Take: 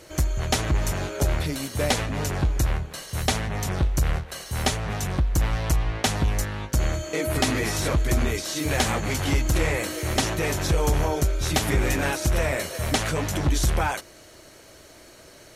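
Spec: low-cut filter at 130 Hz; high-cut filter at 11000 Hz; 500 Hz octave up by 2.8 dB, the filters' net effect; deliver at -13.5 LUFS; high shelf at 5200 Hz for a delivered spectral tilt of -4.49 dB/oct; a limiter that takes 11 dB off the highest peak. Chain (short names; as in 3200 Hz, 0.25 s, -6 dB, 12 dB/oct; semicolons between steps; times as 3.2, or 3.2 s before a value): HPF 130 Hz; LPF 11000 Hz; bell 500 Hz +3.5 dB; high shelf 5200 Hz -5.5 dB; gain +16 dB; limiter -2.5 dBFS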